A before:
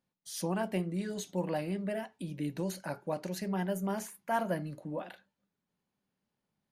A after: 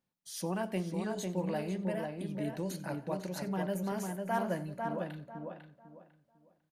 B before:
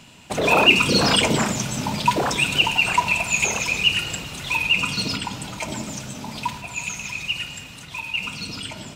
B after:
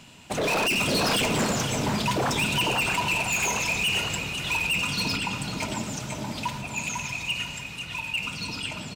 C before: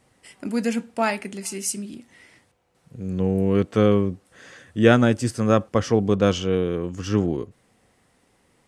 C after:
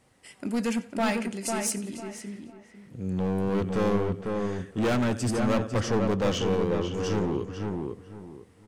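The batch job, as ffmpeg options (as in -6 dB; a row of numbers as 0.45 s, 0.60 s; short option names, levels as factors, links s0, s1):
-filter_complex "[0:a]asplit=2[s0][s1];[s1]aecho=0:1:91|182|273:0.1|0.042|0.0176[s2];[s0][s2]amix=inputs=2:normalize=0,volume=10.6,asoftclip=hard,volume=0.0944,asplit=2[s3][s4];[s4]adelay=499,lowpass=f=2000:p=1,volume=0.668,asplit=2[s5][s6];[s6]adelay=499,lowpass=f=2000:p=1,volume=0.27,asplit=2[s7][s8];[s8]adelay=499,lowpass=f=2000:p=1,volume=0.27,asplit=2[s9][s10];[s10]adelay=499,lowpass=f=2000:p=1,volume=0.27[s11];[s5][s7][s9][s11]amix=inputs=4:normalize=0[s12];[s3][s12]amix=inputs=2:normalize=0,volume=0.794"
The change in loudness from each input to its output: -1.0 LU, -5.0 LU, -6.0 LU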